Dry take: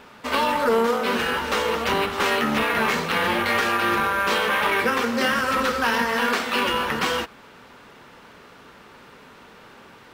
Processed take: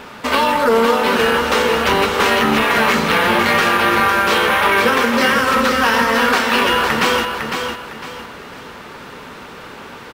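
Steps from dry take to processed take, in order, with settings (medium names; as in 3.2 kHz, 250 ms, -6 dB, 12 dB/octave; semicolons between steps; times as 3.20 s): in parallel at +3 dB: compression, threshold -31 dBFS, peak gain reduction 13.5 dB; on the sum: feedback delay 505 ms, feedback 32%, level -6 dB; trim +3.5 dB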